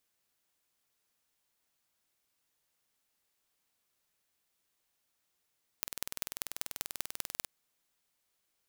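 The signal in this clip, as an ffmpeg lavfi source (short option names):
-f lavfi -i "aevalsrc='0.531*eq(mod(n,2162),0)*(0.5+0.5*eq(mod(n,8648),0))':d=1.64:s=44100"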